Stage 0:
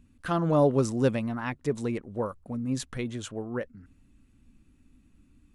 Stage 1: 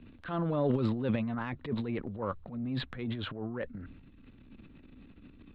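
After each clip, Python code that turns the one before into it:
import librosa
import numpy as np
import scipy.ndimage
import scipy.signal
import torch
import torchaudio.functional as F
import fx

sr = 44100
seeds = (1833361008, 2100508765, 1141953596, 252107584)

y = scipy.signal.sosfilt(scipy.signal.ellip(4, 1.0, 40, 3900.0, 'lowpass', fs=sr, output='sos'), x)
y = fx.transient(y, sr, attack_db=-11, sustain_db=11)
y = fx.band_squash(y, sr, depth_pct=40)
y = F.gain(torch.from_numpy(y), -3.5).numpy()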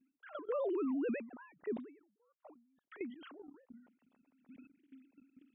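y = fx.sine_speech(x, sr)
y = fx.level_steps(y, sr, step_db=19)
y = fx.end_taper(y, sr, db_per_s=110.0)
y = F.gain(torch.from_numpy(y), 3.5).numpy()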